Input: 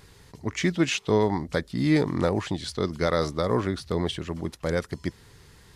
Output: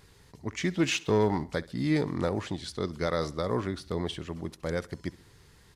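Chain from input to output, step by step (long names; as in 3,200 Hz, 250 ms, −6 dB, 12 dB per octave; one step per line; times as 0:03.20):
0:00.77–0:01.44: leveller curve on the samples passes 1
on a send: repeating echo 66 ms, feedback 47%, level −21 dB
on the sum: level −5 dB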